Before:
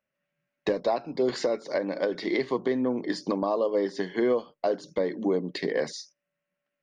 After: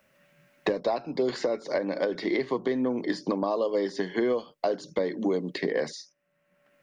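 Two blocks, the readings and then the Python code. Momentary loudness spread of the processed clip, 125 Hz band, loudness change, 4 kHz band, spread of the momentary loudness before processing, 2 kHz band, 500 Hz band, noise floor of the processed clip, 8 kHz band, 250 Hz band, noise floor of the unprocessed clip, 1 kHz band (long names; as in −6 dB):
4 LU, 0.0 dB, −0.5 dB, −1.0 dB, 5 LU, +0.5 dB, −1.0 dB, −73 dBFS, can't be measured, 0.0 dB, −85 dBFS, −0.5 dB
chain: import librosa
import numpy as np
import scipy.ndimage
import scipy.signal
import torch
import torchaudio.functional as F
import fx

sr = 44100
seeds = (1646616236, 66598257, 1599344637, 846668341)

y = fx.band_squash(x, sr, depth_pct=70)
y = y * 10.0 ** (-1.0 / 20.0)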